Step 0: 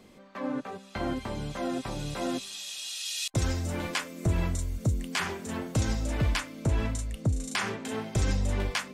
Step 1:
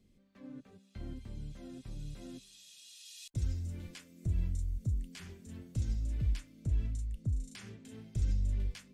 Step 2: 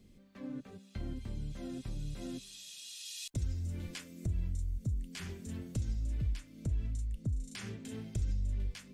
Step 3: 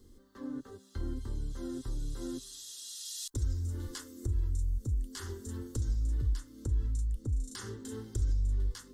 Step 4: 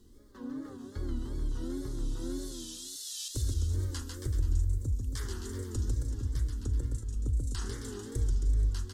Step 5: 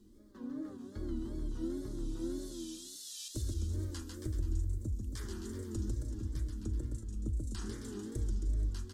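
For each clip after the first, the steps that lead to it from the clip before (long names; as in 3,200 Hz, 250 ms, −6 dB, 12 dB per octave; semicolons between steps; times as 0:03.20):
guitar amp tone stack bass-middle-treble 10-0-1; level +4 dB
downward compressor 2 to 1, threshold −45 dBFS, peak gain reduction 10.5 dB; level +7 dB
in parallel at −10 dB: soft clipping −35 dBFS, distortion −11 dB; on the sum: phaser with its sweep stopped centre 650 Hz, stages 6; level +4 dB
bouncing-ball delay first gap 140 ms, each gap 0.9×, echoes 5; tape wow and flutter 120 cents
hollow resonant body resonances 210/320/610/2,400 Hz, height 12 dB, ringing for 85 ms; level −6 dB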